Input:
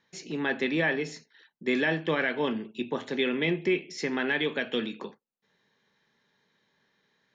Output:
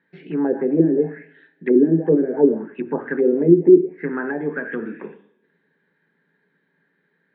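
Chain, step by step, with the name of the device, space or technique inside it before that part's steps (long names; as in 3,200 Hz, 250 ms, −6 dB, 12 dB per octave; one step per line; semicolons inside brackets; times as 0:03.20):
0:03.86–0:04.88: parametric band 730 Hz −4 dB 2.4 octaves
coupled-rooms reverb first 0.66 s, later 2 s, from −26 dB, DRR 6.5 dB
envelope filter bass rig (envelope-controlled low-pass 340–4,700 Hz down, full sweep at −21.5 dBFS; loudspeaker in its box 61–2,200 Hz, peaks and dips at 100 Hz −7 dB, 170 Hz +9 dB, 280 Hz +9 dB, 420 Hz +8 dB, 1,100 Hz −5 dB, 1,600 Hz +9 dB)
level −1.5 dB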